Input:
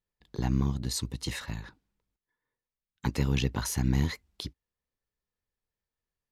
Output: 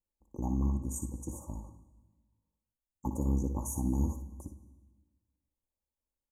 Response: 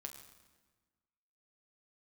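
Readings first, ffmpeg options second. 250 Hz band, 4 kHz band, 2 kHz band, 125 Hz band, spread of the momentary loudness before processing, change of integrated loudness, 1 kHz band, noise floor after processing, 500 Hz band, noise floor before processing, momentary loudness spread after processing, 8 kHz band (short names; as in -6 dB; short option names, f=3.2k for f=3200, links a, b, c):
-2.5 dB, under -35 dB, under -40 dB, -5.0 dB, 14 LU, -4.0 dB, -3.5 dB, under -85 dBFS, -4.5 dB, under -85 dBFS, 16 LU, -4.5 dB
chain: -filter_complex "[0:a]asuperstop=centerf=2700:order=20:qfactor=0.51,aecho=1:1:3.5:0.55,asplit=2[a][b];[1:a]atrim=start_sample=2205,adelay=59[c];[b][c]afir=irnorm=-1:irlink=0,volume=-3.5dB[d];[a][d]amix=inputs=2:normalize=0,volume=-4.5dB"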